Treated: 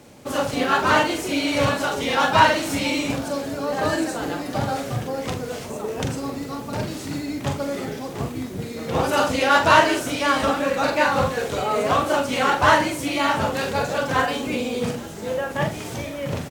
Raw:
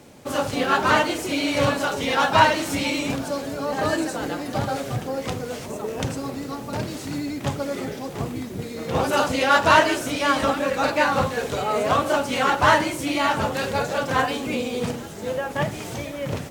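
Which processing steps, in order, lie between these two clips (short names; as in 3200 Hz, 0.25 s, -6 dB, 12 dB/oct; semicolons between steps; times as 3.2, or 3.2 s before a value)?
doubler 43 ms -7 dB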